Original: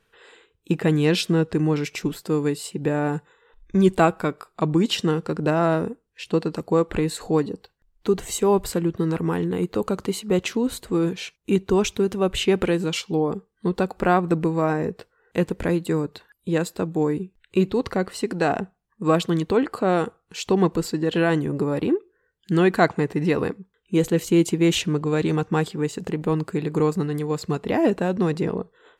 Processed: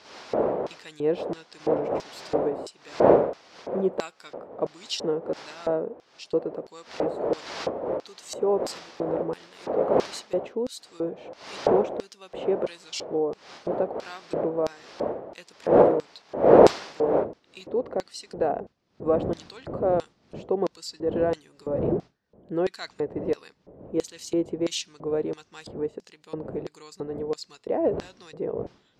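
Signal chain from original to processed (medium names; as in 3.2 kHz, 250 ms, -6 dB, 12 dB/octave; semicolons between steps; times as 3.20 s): wind noise 590 Hz -20 dBFS, from 17.23 s 270 Hz, from 18.35 s 150 Hz; LFO band-pass square 1.5 Hz 540–5100 Hz; trim +1 dB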